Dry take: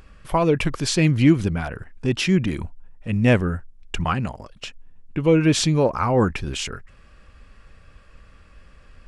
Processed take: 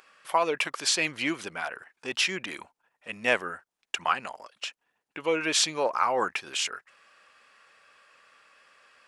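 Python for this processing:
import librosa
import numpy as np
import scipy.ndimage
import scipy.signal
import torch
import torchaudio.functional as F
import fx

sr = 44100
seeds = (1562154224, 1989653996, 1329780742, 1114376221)

y = scipy.signal.sosfilt(scipy.signal.butter(2, 750.0, 'highpass', fs=sr, output='sos'), x)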